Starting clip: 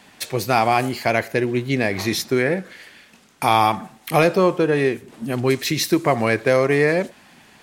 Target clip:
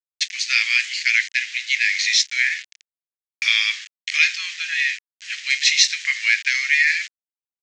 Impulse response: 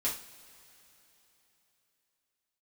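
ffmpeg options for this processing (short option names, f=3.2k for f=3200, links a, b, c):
-filter_complex "[0:a]asplit=2[a][b];[1:a]atrim=start_sample=2205,atrim=end_sample=3528[c];[b][c]afir=irnorm=-1:irlink=0,volume=-12.5dB[d];[a][d]amix=inputs=2:normalize=0,aeval=exprs='val(0)*gte(abs(val(0)),0.0335)':c=same,asuperpass=centerf=3700:order=12:qfactor=0.7,volume=7.5dB"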